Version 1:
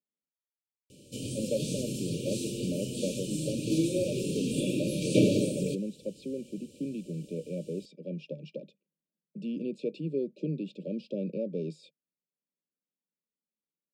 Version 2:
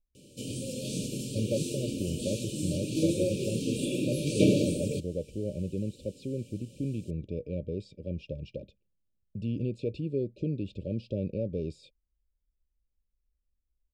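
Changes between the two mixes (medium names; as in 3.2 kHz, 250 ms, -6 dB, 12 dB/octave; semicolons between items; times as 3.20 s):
speech: remove steep high-pass 150 Hz 96 dB/octave; background: entry -0.75 s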